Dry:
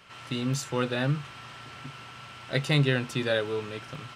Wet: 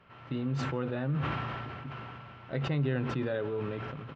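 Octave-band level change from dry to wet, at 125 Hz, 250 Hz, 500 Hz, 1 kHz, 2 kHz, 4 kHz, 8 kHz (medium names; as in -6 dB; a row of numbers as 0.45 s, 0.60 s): -3.0 dB, -3.0 dB, -4.5 dB, -1.0 dB, -8.0 dB, -13.0 dB, under -15 dB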